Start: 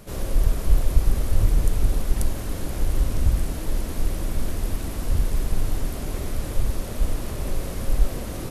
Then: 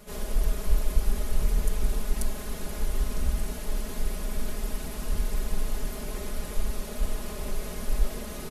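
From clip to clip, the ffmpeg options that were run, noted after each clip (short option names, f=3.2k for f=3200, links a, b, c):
-af "lowshelf=f=390:g=-5,aecho=1:1:4.8:0.88,volume=-4.5dB"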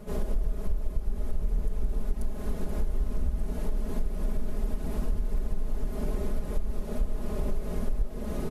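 -af "tiltshelf=f=1.2k:g=8,acompressor=threshold=-23dB:ratio=5"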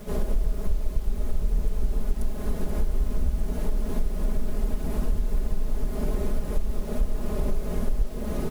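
-af "acrusher=bits=8:mix=0:aa=0.000001,volume=3.5dB"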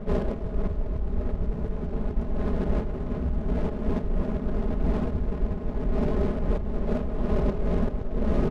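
-af "adynamicsmooth=sensitivity=7:basefreq=660,afftfilt=real='re*lt(hypot(re,im),0.891)':imag='im*lt(hypot(re,im),0.891)':win_size=1024:overlap=0.75,volume=5.5dB"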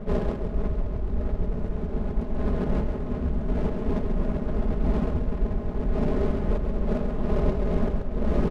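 -af "aecho=1:1:135:0.501"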